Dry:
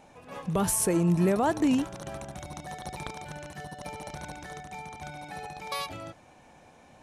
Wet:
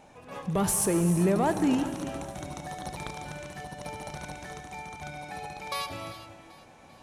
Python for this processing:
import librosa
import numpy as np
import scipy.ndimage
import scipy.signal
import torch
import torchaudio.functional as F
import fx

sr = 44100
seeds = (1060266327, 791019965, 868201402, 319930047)

p1 = np.clip(x, -10.0 ** (-25.0 / 20.0), 10.0 ** (-25.0 / 20.0))
p2 = x + (p1 * 10.0 ** (-4.5 / 20.0))
p3 = fx.echo_feedback(p2, sr, ms=391, feedback_pct=59, wet_db=-19)
p4 = fx.rev_gated(p3, sr, seeds[0], gate_ms=440, shape='flat', drr_db=9.0)
y = p4 * 10.0 ** (-3.5 / 20.0)